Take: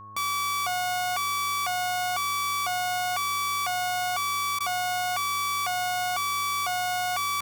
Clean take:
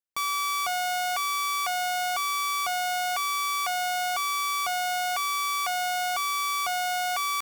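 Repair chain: de-hum 104.9 Hz, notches 17; notch 1100 Hz, Q 30; interpolate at 4.59, 13 ms

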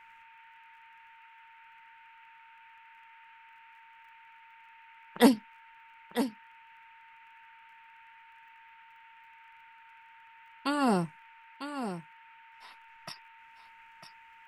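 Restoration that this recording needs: de-click; notch 910 Hz, Q 30; noise print and reduce 29 dB; inverse comb 0.95 s -9.5 dB

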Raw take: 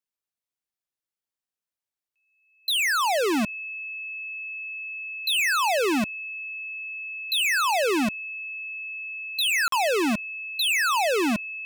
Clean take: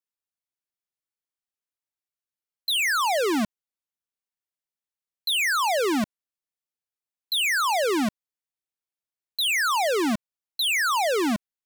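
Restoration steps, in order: notch 2600 Hz, Q 30; interpolate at 9.68, 43 ms

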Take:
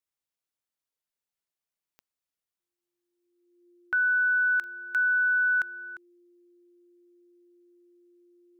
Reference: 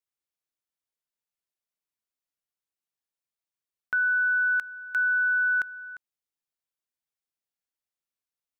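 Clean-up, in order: de-click; notch 350 Hz, Q 30

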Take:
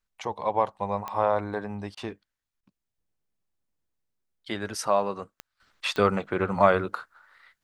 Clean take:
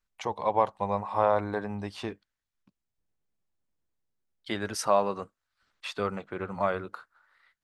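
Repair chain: de-click; interpolate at 1.95/2.61, 20 ms; gain correction -8.5 dB, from 5.6

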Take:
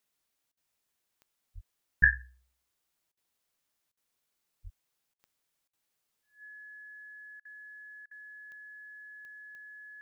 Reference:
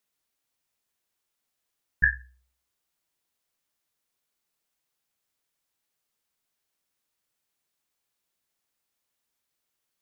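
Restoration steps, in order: de-click; notch 1700 Hz, Q 30; 1.54–1.66 HPF 140 Hz 24 dB/oct; 4.63–4.75 HPF 140 Hz 24 dB/oct; interpolate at 0.52/3.12/3.92/5.14/5.68/7.4/8.06, 50 ms

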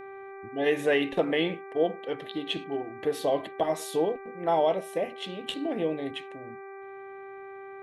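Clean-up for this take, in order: de-hum 391 Hz, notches 6

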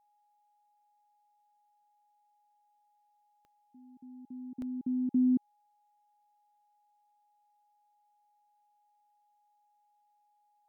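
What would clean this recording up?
de-click; notch 830 Hz, Q 30; interpolate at 4.62, 1.2 ms

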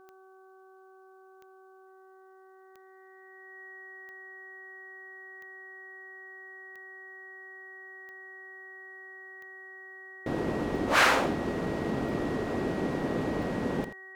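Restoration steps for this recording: de-click; de-hum 379.6 Hz, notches 4; notch 1900 Hz, Q 30; inverse comb 83 ms -11.5 dB

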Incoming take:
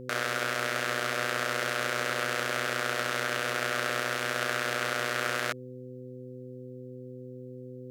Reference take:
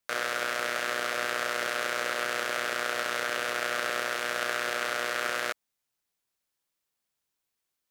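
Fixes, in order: de-hum 126.6 Hz, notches 4

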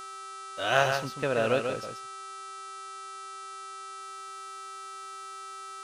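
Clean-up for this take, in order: de-hum 389.4 Hz, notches 26; notch 1300 Hz, Q 30; inverse comb 0.14 s -6 dB

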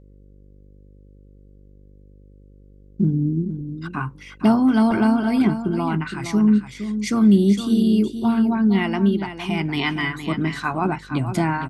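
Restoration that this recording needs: de-hum 49.6 Hz, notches 11; inverse comb 0.464 s -10 dB

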